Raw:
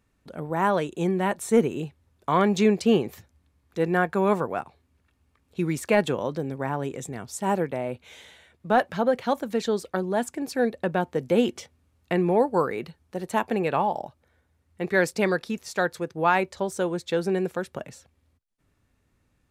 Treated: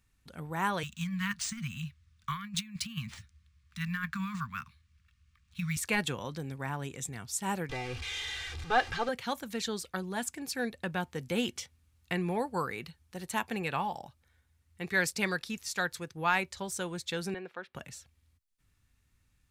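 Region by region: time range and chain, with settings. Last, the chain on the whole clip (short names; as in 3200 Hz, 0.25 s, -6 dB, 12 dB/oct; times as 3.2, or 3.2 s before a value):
0.83–5.77 Chebyshev band-stop 220–1100 Hz, order 4 + negative-ratio compressor -28 dBFS, ratio -0.5 + decimation joined by straight lines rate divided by 3×
7.69–9.09 zero-crossing step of -34.5 dBFS + LPF 5000 Hz + comb 2.5 ms, depth 91%
17.34–17.75 HPF 380 Hz + air absorption 350 m
whole clip: bell 440 Hz -15 dB 3 oct; notch 620 Hz, Q 12; gain +2 dB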